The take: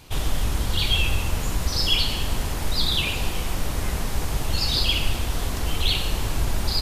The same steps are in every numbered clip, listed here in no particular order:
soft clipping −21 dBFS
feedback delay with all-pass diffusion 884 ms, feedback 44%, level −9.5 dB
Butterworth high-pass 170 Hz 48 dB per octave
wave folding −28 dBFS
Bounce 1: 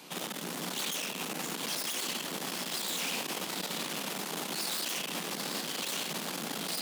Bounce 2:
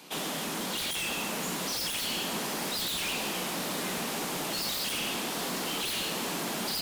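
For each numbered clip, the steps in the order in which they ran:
feedback delay with all-pass diffusion, then soft clipping, then wave folding, then Butterworth high-pass
Butterworth high-pass, then soft clipping, then wave folding, then feedback delay with all-pass diffusion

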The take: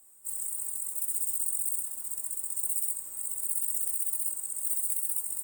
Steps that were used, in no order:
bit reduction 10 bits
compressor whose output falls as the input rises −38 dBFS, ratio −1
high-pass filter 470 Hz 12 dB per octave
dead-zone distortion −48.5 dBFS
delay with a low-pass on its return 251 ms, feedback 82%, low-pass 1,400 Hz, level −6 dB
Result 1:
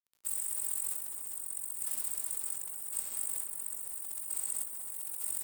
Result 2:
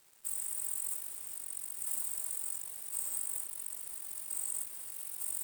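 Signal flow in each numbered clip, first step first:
high-pass filter, then dead-zone distortion, then bit reduction, then compressor whose output falls as the input rises, then delay with a low-pass on its return
compressor whose output falls as the input rises, then delay with a low-pass on its return, then bit reduction, then high-pass filter, then dead-zone distortion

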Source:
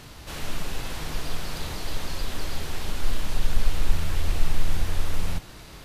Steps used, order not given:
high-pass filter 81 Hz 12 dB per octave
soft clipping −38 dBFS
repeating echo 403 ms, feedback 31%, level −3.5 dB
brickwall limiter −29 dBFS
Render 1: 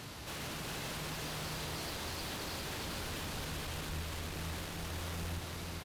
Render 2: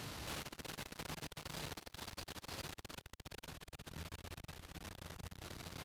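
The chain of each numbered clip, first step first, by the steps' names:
high-pass filter, then brickwall limiter, then soft clipping, then repeating echo
brickwall limiter, then repeating echo, then soft clipping, then high-pass filter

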